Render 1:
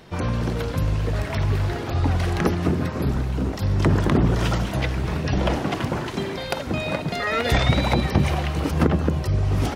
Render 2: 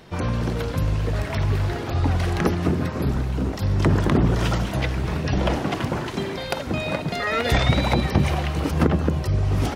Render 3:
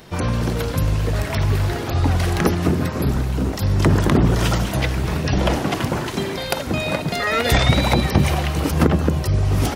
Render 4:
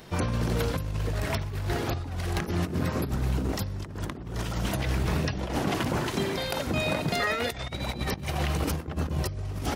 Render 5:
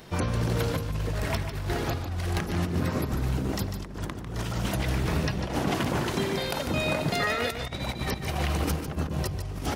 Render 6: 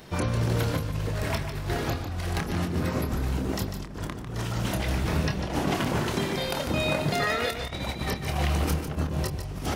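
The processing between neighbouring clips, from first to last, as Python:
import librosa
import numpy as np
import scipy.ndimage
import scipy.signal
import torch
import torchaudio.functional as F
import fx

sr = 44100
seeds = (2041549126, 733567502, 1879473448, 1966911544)

y1 = x
y2 = fx.high_shelf(y1, sr, hz=7200.0, db=10.5)
y2 = F.gain(torch.from_numpy(y2), 3.0).numpy()
y3 = fx.over_compress(y2, sr, threshold_db=-21.0, ratio=-0.5)
y3 = F.gain(torch.from_numpy(y3), -7.0).numpy()
y4 = y3 + 10.0 ** (-8.5 / 20.0) * np.pad(y3, (int(148 * sr / 1000.0), 0))[:len(y3)]
y5 = fx.doubler(y4, sr, ms=27.0, db=-8)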